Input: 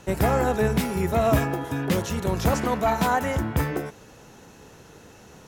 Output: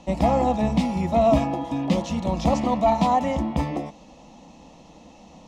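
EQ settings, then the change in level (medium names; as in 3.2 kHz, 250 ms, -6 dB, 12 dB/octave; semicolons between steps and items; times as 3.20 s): distance through air 130 m; static phaser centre 410 Hz, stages 6; +5.0 dB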